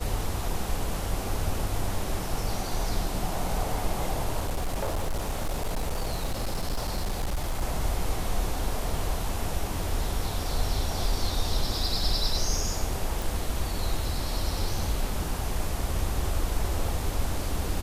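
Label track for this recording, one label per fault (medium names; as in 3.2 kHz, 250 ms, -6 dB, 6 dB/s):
4.400000	7.620000	clipped -24 dBFS
13.220000	13.220000	pop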